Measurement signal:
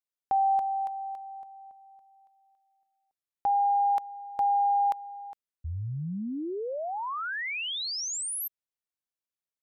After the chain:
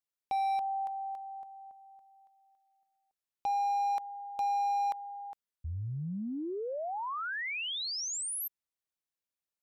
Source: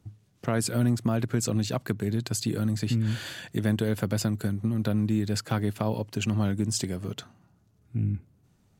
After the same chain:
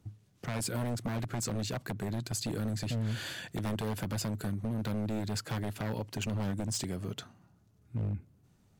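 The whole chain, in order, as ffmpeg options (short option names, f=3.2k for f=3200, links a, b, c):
-filter_complex "[0:a]asplit=2[a][b];[b]acompressor=threshold=-35dB:ratio=6:attack=3.3:release=29:knee=1:detection=rms,volume=0dB[c];[a][c]amix=inputs=2:normalize=0,aeval=exprs='0.106*(abs(mod(val(0)/0.106+3,4)-2)-1)':c=same,volume=-7.5dB"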